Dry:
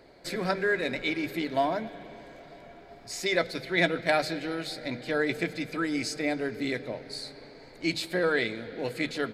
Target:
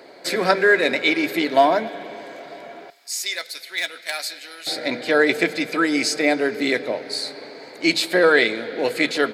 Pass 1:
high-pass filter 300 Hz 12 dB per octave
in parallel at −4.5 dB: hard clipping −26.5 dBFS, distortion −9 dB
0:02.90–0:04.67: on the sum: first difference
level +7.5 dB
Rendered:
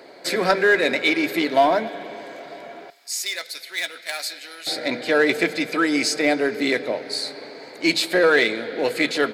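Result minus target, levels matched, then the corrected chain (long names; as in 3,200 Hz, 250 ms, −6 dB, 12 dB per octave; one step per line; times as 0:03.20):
hard clipping: distortion +14 dB
high-pass filter 300 Hz 12 dB per octave
in parallel at −4.5 dB: hard clipping −17.5 dBFS, distortion −22 dB
0:02.90–0:04.67: on the sum: first difference
level +7.5 dB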